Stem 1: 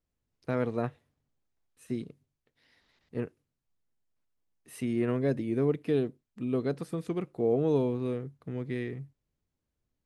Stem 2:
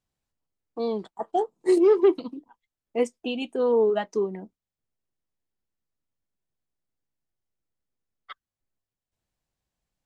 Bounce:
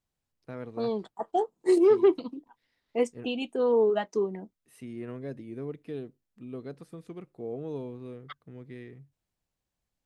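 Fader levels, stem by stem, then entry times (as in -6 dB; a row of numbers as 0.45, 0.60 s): -10.0, -2.0 dB; 0.00, 0.00 s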